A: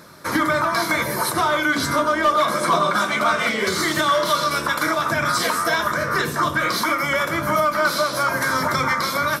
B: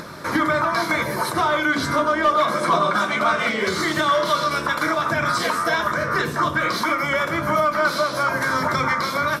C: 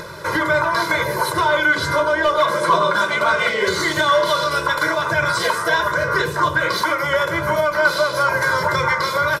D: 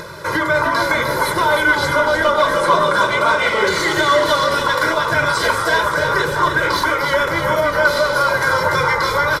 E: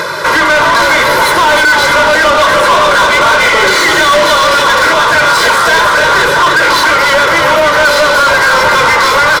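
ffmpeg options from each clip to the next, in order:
ffmpeg -i in.wav -af "acompressor=mode=upward:threshold=-26dB:ratio=2.5,highshelf=frequency=6700:gain=-10.5" out.wav
ffmpeg -i in.wav -af "aecho=1:1:2:0.98" out.wav
ffmpeg -i in.wav -filter_complex "[0:a]asplit=8[link_01][link_02][link_03][link_04][link_05][link_06][link_07][link_08];[link_02]adelay=306,afreqshift=-41,volume=-6.5dB[link_09];[link_03]adelay=612,afreqshift=-82,volume=-11.9dB[link_10];[link_04]adelay=918,afreqshift=-123,volume=-17.2dB[link_11];[link_05]adelay=1224,afreqshift=-164,volume=-22.6dB[link_12];[link_06]adelay=1530,afreqshift=-205,volume=-27.9dB[link_13];[link_07]adelay=1836,afreqshift=-246,volume=-33.3dB[link_14];[link_08]adelay=2142,afreqshift=-287,volume=-38.6dB[link_15];[link_01][link_09][link_10][link_11][link_12][link_13][link_14][link_15]amix=inputs=8:normalize=0,volume=1dB" out.wav
ffmpeg -i in.wav -filter_complex "[0:a]asplit=2[link_01][link_02];[link_02]highpass=frequency=720:poles=1,volume=26dB,asoftclip=type=tanh:threshold=-1dB[link_03];[link_01][link_03]amix=inputs=2:normalize=0,lowpass=frequency=5500:poles=1,volume=-6dB" out.wav

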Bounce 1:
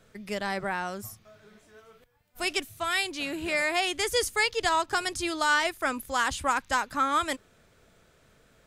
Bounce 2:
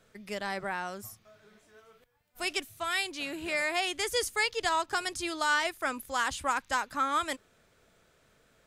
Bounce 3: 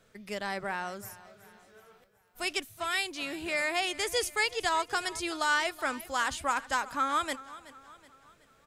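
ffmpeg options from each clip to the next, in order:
ffmpeg -i in.wav -af "lowshelf=frequency=250:gain=-4.5,volume=-3dB" out.wav
ffmpeg -i in.wav -af "aecho=1:1:374|748|1122|1496:0.126|0.0592|0.0278|0.0131" out.wav

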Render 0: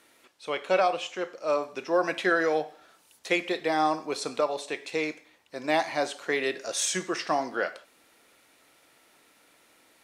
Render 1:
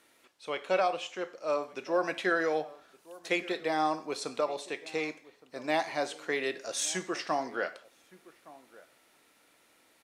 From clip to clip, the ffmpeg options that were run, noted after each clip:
ffmpeg -i in.wav -filter_complex "[0:a]asplit=2[link_01][link_02];[link_02]adelay=1166,volume=-20dB,highshelf=frequency=4000:gain=-26.2[link_03];[link_01][link_03]amix=inputs=2:normalize=0,volume=-4dB" out.wav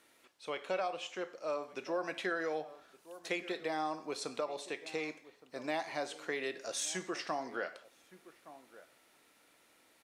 ffmpeg -i in.wav -af "acompressor=threshold=-34dB:ratio=2,volume=-2dB" out.wav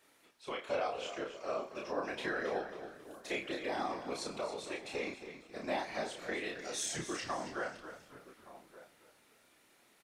ffmpeg -i in.wav -filter_complex "[0:a]afftfilt=real='hypot(re,im)*cos(2*PI*random(0))':imag='hypot(re,im)*sin(2*PI*random(1))':win_size=512:overlap=0.75,asplit=2[link_01][link_02];[link_02]adelay=31,volume=-2.5dB[link_03];[link_01][link_03]amix=inputs=2:normalize=0,asplit=5[link_04][link_05][link_06][link_07][link_08];[link_05]adelay=272,afreqshift=-43,volume=-11dB[link_09];[link_06]adelay=544,afreqshift=-86,volume=-19dB[link_10];[link_07]adelay=816,afreqshift=-129,volume=-26.9dB[link_11];[link_08]adelay=1088,afreqshift=-172,volume=-34.9dB[link_12];[link_04][link_09][link_10][link_11][link_12]amix=inputs=5:normalize=0,volume=3.5dB" out.wav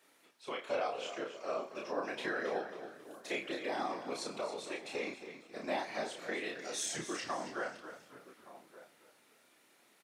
ffmpeg -i in.wav -af "highpass=160" out.wav

